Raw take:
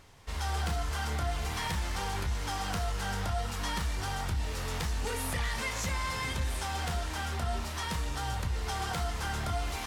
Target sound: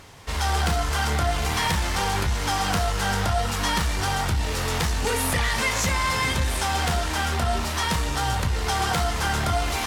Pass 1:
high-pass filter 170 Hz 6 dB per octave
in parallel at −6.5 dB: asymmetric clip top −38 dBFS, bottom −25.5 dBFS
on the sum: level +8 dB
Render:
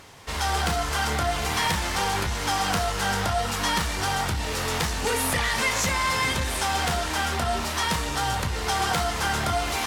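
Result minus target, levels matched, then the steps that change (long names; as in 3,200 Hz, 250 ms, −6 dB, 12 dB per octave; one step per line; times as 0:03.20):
125 Hz band −3.5 dB
change: high-pass filter 67 Hz 6 dB per octave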